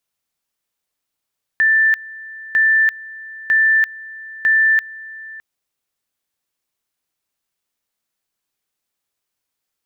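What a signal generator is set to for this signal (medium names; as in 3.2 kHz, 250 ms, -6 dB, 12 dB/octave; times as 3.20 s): two-level tone 1.77 kHz -10.5 dBFS, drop 20.5 dB, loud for 0.34 s, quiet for 0.61 s, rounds 4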